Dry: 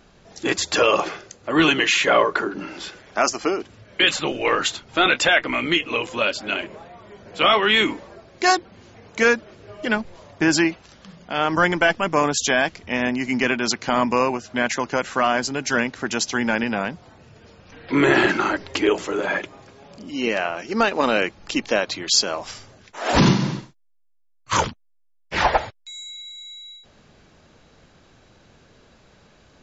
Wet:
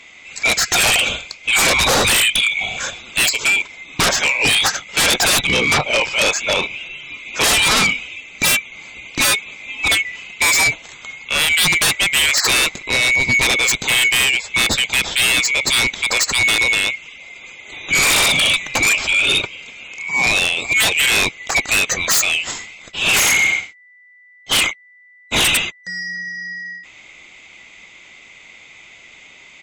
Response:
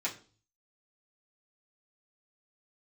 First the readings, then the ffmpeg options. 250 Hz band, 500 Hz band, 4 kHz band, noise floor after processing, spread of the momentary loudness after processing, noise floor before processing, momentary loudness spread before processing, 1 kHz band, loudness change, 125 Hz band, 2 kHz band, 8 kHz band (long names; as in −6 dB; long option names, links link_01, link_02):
−7.0 dB, −4.5 dB, +9.0 dB, −45 dBFS, 15 LU, −56 dBFS, 16 LU, −1.5 dB, +6.0 dB, −1.0 dB, +7.5 dB, can't be measured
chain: -af "afftfilt=real='real(if(lt(b,920),b+92*(1-2*mod(floor(b/92),2)),b),0)':imag='imag(if(lt(b,920),b+92*(1-2*mod(floor(b/92),2)),b),0)':win_size=2048:overlap=0.75,aresample=22050,aresample=44100,aeval=exprs='0.668*sin(PI/2*5.01*val(0)/0.668)':channel_layout=same,volume=-7.5dB"